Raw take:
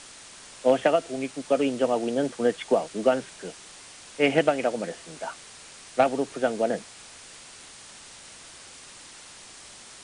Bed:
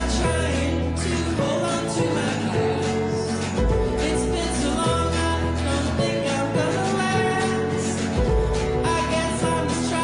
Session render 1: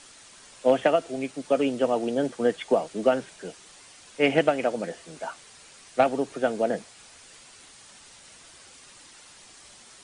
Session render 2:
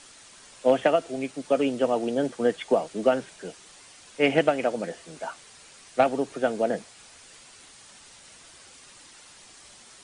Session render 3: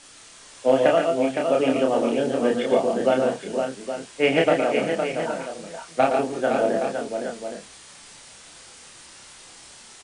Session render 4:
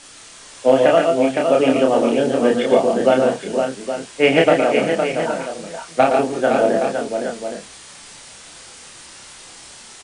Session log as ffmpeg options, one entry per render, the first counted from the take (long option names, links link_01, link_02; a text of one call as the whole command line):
ffmpeg -i in.wav -af "afftdn=noise_reduction=6:noise_floor=-47" out.wav
ffmpeg -i in.wav -af anull out.wav
ffmpeg -i in.wav -filter_complex "[0:a]asplit=2[link_01][link_02];[link_02]adelay=30,volume=-2.5dB[link_03];[link_01][link_03]amix=inputs=2:normalize=0,aecho=1:1:116|140|512|818:0.422|0.398|0.501|0.316" out.wav
ffmpeg -i in.wav -af "volume=5.5dB,alimiter=limit=-2dB:level=0:latency=1" out.wav